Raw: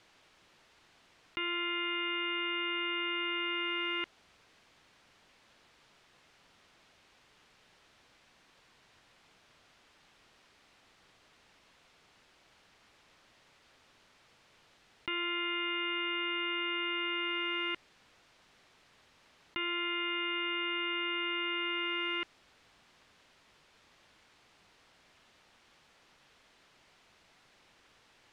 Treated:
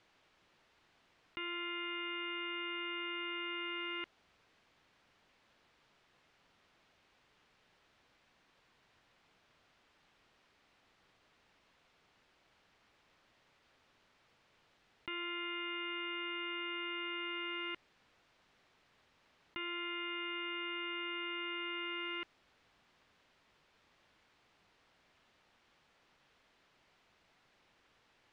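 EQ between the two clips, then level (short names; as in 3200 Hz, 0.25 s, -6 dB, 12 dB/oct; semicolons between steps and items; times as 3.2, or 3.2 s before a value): high shelf 6200 Hz -9.5 dB; -5.5 dB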